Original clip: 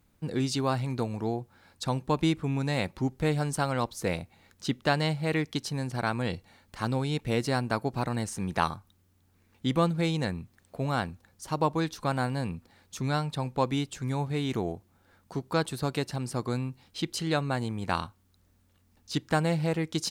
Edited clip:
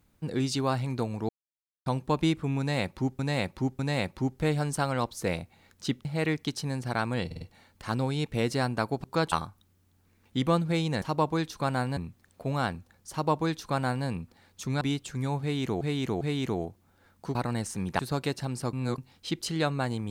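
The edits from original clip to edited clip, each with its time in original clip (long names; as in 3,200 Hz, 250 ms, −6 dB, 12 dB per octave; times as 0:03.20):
0:01.29–0:01.86: silence
0:02.59–0:03.19: repeat, 3 plays
0:04.85–0:05.13: remove
0:06.34: stutter 0.05 s, 4 plays
0:07.97–0:08.61: swap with 0:15.42–0:15.70
0:11.45–0:12.40: duplicate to 0:10.31
0:13.15–0:13.68: remove
0:14.28–0:14.68: repeat, 3 plays
0:16.44–0:16.69: reverse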